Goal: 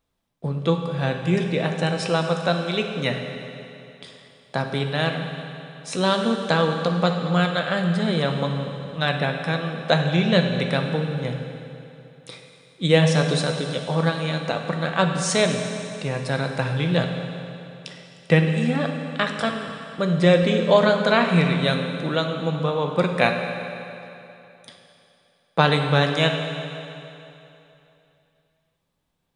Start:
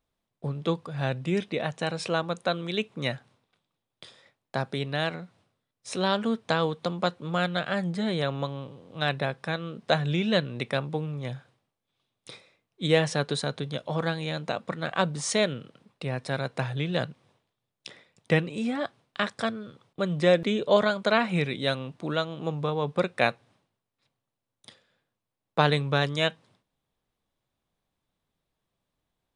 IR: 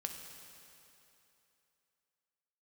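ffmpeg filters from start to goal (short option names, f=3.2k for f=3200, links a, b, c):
-filter_complex "[1:a]atrim=start_sample=2205[a];[0:a][a]afir=irnorm=-1:irlink=0,volume=6.5dB"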